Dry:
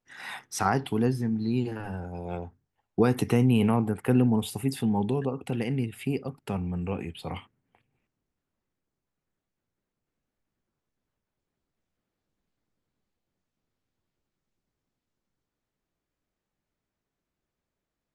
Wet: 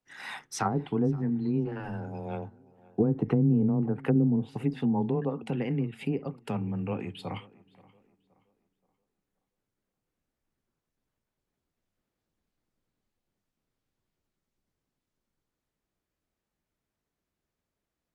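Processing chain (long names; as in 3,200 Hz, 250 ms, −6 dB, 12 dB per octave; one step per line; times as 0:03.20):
treble cut that deepens with the level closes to 380 Hz, closed at −19 dBFS
frequency shifter +14 Hz
tape delay 526 ms, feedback 38%, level −21.5 dB, low-pass 2,800 Hz
level −1 dB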